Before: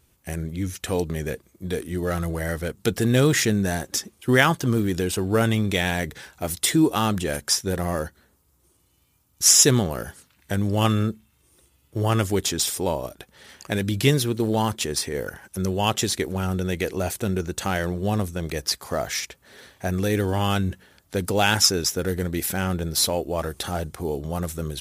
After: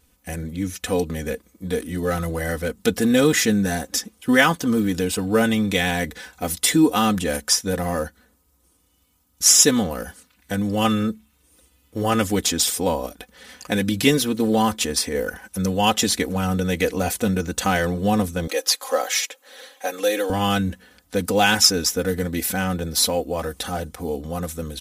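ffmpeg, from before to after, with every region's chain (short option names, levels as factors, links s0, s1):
-filter_complex "[0:a]asettb=1/sr,asplit=3[s0][s1][s2];[s0]atrim=end=18.474[s3];[s1]atrim=start=18.47:end=20.3,asetpts=PTS-STARTPTS,afade=t=in:d=0.004:c=qsin,afade=t=out:st=1.826:d=0.004:c=qsin,highpass=f=390:w=0.5412,highpass=f=390:w=1.3066,aecho=1:1:3.7:0.73,atrim=end_sample=80703[s4];[s2]atrim=start=20.296[s5];[s3][s4]acrossfade=d=0.004:c1=hsin:c2=qsin[s6];[s6][s5]acrossfade=d=0.004:c1=qsin:c2=hsin,aecho=1:1:4:0.8,dynaudnorm=f=120:g=31:m=1.41"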